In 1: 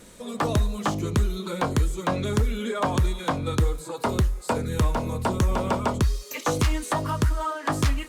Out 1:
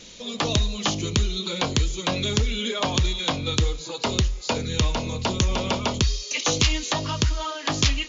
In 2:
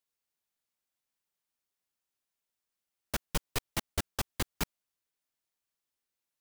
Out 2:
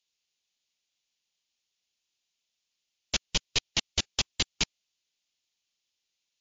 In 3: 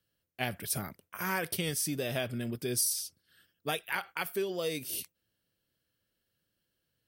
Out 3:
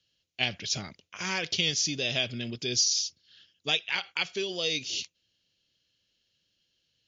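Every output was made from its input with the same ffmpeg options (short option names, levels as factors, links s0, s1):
-af "highshelf=f=2100:t=q:w=1.5:g=10.5" -ar 16000 -c:a libmp3lame -b:a 80k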